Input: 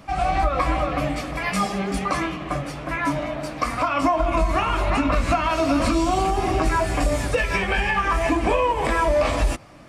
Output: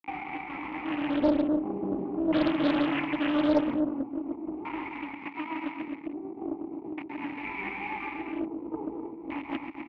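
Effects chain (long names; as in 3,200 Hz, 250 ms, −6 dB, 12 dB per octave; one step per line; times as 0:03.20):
compressor whose output falls as the input rises −31 dBFS, ratio −1
0:04.89–0:07.32: high-pass filter 120 Hz 24 dB per octave
bit reduction 5 bits
auto-filter low-pass square 0.43 Hz 470–1,900 Hz
formant filter u
multi-tap delay 133/254/313 ms −6.5/−6.5/−14.5 dB
highs frequency-modulated by the lows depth 0.81 ms
level +6.5 dB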